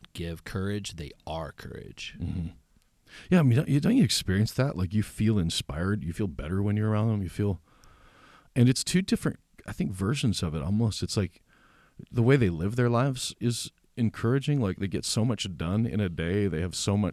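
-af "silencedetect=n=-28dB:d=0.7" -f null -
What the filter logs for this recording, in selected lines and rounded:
silence_start: 2.47
silence_end: 3.31 | silence_duration: 0.85
silence_start: 7.54
silence_end: 8.56 | silence_duration: 1.02
silence_start: 11.26
silence_end: 12.16 | silence_duration: 0.91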